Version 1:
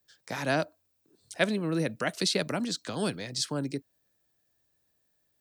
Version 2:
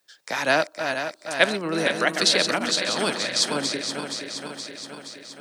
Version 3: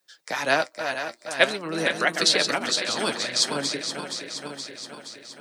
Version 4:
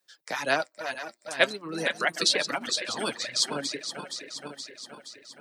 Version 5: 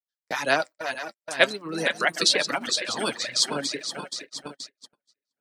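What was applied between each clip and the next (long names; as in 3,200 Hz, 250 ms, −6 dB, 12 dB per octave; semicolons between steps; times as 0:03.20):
feedback delay that plays each chunk backwards 236 ms, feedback 79%, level −7 dB; meter weighting curve A; level +8.5 dB
harmonic and percussive parts rebalanced percussive +6 dB; flanger 0.49 Hz, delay 5.4 ms, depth 3.7 ms, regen +61%; level −1.5 dB
reverb reduction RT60 1.4 s; level −3 dB
noise gate −39 dBFS, range −44 dB; level +3 dB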